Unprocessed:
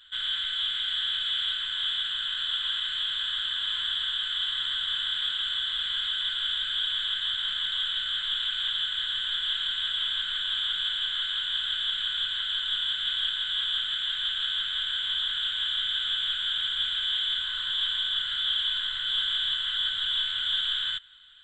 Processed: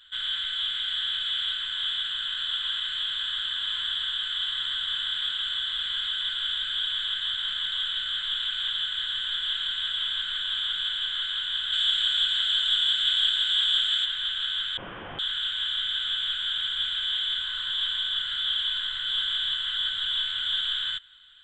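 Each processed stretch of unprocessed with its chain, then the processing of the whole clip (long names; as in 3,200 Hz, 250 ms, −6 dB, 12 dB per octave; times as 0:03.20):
0:11.72–0:14.04: high-shelf EQ 3,400 Hz +10.5 dB + surface crackle 300 per second −49 dBFS
0:14.77–0:15.19: variable-slope delta modulation 16 kbit/s + high-shelf EQ 2,500 Hz −11.5 dB + double-tracking delay 41 ms −2.5 dB
whole clip: no processing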